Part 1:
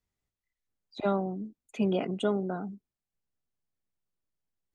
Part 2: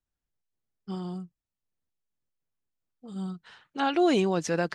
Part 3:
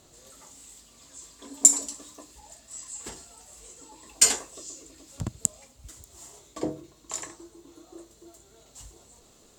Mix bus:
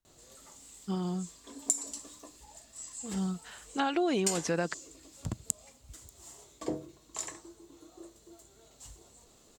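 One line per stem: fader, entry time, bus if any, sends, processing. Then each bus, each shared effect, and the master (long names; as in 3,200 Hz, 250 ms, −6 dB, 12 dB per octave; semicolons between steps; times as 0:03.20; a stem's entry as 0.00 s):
muted
+2.0 dB, 0.00 s, no send, no processing
−3.5 dB, 0.05 s, no send, no processing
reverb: not used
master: downward compressor 6 to 1, threshold −26 dBFS, peak gain reduction 12.5 dB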